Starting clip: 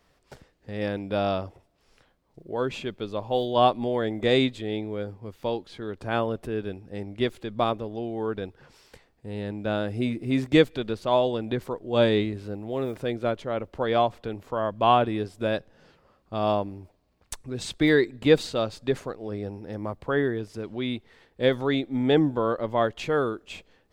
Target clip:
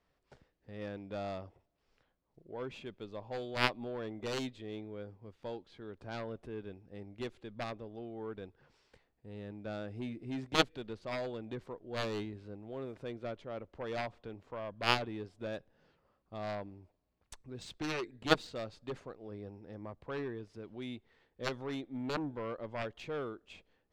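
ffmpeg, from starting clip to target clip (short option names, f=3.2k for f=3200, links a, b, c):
-af "adynamicsmooth=sensitivity=5:basefreq=6.5k,aeval=exprs='0.531*(cos(1*acos(clip(val(0)/0.531,-1,1)))-cos(1*PI/2))+0.237*(cos(3*acos(clip(val(0)/0.531,-1,1)))-cos(3*PI/2))':c=same,volume=-3dB"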